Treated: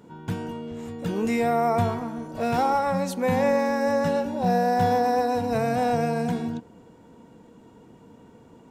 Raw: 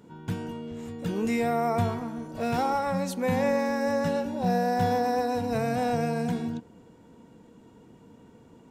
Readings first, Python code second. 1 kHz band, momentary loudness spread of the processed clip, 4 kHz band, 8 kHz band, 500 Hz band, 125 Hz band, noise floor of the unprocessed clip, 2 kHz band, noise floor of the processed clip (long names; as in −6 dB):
+4.5 dB, 11 LU, +1.5 dB, +1.5 dB, +3.5 dB, +1.5 dB, −54 dBFS, +2.5 dB, −52 dBFS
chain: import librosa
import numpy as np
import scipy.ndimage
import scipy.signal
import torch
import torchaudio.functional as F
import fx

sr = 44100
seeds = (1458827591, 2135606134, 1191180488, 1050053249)

y = fx.peak_eq(x, sr, hz=800.0, db=3.0, octaves=1.8)
y = y * 10.0 ** (1.5 / 20.0)